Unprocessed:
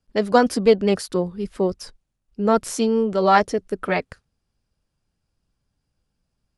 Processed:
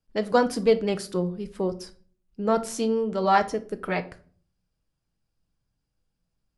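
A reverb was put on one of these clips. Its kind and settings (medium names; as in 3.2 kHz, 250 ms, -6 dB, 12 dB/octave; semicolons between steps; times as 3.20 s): simulated room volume 390 m³, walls furnished, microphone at 0.62 m; trim -5.5 dB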